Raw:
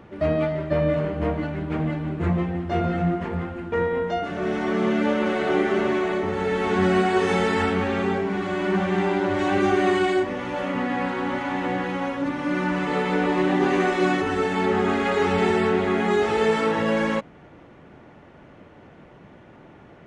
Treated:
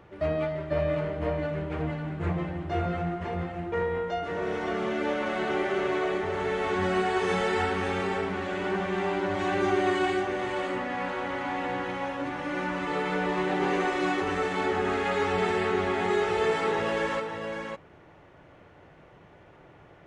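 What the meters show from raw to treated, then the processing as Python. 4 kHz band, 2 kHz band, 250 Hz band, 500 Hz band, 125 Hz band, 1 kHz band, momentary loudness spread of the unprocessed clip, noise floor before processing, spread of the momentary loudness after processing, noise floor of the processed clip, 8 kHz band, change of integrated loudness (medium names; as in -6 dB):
-3.5 dB, -3.5 dB, -8.0 dB, -5.0 dB, -6.5 dB, -3.5 dB, 6 LU, -48 dBFS, 6 LU, -54 dBFS, -3.5 dB, -5.5 dB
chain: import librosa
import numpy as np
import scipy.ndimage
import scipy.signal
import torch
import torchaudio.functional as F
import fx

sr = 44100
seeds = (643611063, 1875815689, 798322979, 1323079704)

y = fx.peak_eq(x, sr, hz=230.0, db=-9.0, octaves=0.72)
y = y + 10.0 ** (-6.0 / 20.0) * np.pad(y, (int(555 * sr / 1000.0), 0))[:len(y)]
y = F.gain(torch.from_numpy(y), -4.5).numpy()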